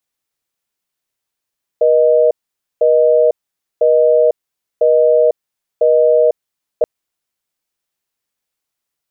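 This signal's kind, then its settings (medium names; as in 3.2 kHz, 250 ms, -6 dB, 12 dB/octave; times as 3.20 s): call progress tone busy tone, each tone -10.5 dBFS 5.03 s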